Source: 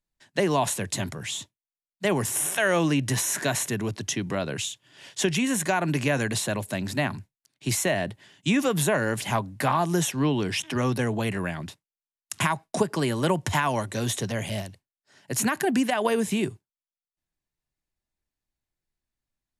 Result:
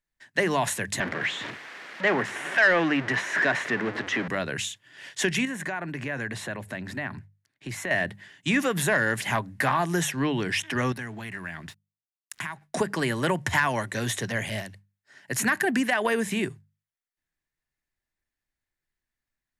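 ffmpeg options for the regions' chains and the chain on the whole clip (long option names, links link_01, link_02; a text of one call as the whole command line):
ffmpeg -i in.wav -filter_complex "[0:a]asettb=1/sr,asplit=3[link_01][link_02][link_03];[link_01]atrim=end=1.004[link_04];[link_02]atrim=start=1:end=4.28,asetpts=PTS-STARTPTS,afade=type=in:duration=0.004:curve=qsin,afade=type=out:start_time=3.276:duration=0.004:curve=qsin,aeval=exprs='val(0)+0.5*0.0596*sgn(val(0))':channel_layout=same,highpass=230,lowpass=2700[link_05];[link_03]atrim=start=4.276[link_06];[link_04][link_05]acrossfade=duration=0.004:curve1=hsin:curve2=qsin[link_07];[link_07][link_06]acrossfade=duration=0.004:curve1=qsin:curve2=hsin,asettb=1/sr,asplit=3[link_08][link_09][link_10];[link_08]atrim=end=5.454[link_11];[link_09]atrim=start=5.45:end=7.91,asetpts=PTS-STARTPTS,afade=type=in:duration=0.004:curve=qsin,afade=type=out:start_time=2.456:duration=0.004:curve=qsin,highshelf=frequency=3600:gain=-11,acompressor=threshold=-31dB:ratio=2.5:attack=3.2:release=140:knee=1:detection=peak[link_12];[link_10]atrim=start=7.906[link_13];[link_11][link_12]acrossfade=duration=0.004:curve1=hsin:curve2=qsin[link_14];[link_14][link_13]acrossfade=duration=0.004:curve1=qsin:curve2=hsin,asettb=1/sr,asplit=3[link_15][link_16][link_17];[link_15]atrim=end=10.924[link_18];[link_16]atrim=start=10.92:end=12.62,asetpts=PTS-STARTPTS,afade=type=in:duration=0.004:curve=qsin,afade=type=out:start_time=1.696:duration=0.004:curve=qsin,equalizer=frequency=500:width_type=o:width=0.41:gain=-10,acompressor=threshold=-35dB:ratio=3:attack=3.2:release=140:knee=1:detection=peak,aeval=exprs='sgn(val(0))*max(abs(val(0))-0.00133,0)':channel_layout=same[link_19];[link_17]atrim=start=12.616[link_20];[link_18][link_19]acrossfade=duration=0.004:curve1=hsin:curve2=qsin[link_21];[link_21][link_20]acrossfade=duration=0.004:curve1=qsin:curve2=hsin,equalizer=frequency=1800:width_type=o:width=0.7:gain=10.5,bandreject=frequency=50:width_type=h:width=6,bandreject=frequency=100:width_type=h:width=6,bandreject=frequency=150:width_type=h:width=6,bandreject=frequency=200:width_type=h:width=6,acontrast=71,volume=-8.5dB" out.wav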